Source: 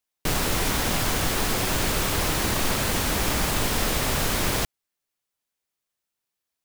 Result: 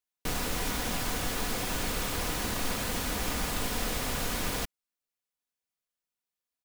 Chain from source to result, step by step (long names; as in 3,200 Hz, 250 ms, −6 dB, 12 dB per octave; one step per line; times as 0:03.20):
comb filter 4.1 ms, depth 32%
level −8 dB